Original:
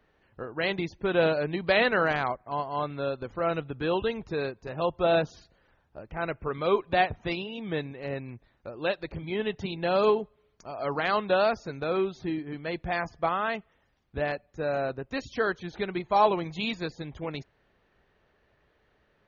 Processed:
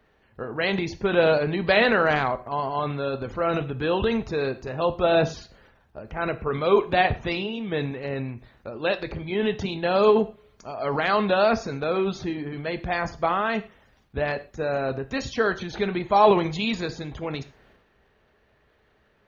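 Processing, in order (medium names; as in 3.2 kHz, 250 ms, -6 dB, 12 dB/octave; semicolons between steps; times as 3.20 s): transient shaper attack +1 dB, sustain +8 dB; gated-style reverb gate 150 ms falling, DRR 10.5 dB; trim +3 dB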